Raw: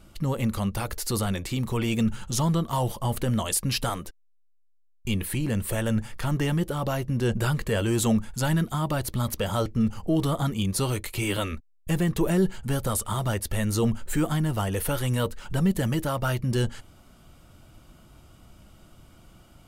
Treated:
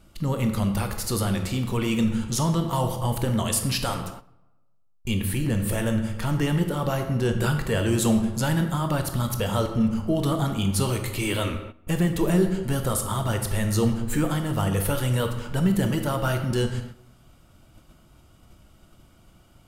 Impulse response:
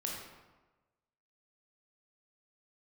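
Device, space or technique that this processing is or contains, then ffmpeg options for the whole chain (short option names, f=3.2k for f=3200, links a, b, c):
keyed gated reverb: -filter_complex "[0:a]asplit=3[a][b][c];[1:a]atrim=start_sample=2205[d];[b][d]afir=irnorm=-1:irlink=0[e];[c]apad=whole_len=867731[f];[e][f]sidechaingate=range=-12dB:threshold=-48dB:ratio=16:detection=peak,volume=-0.5dB[g];[a][g]amix=inputs=2:normalize=0,volume=-4dB"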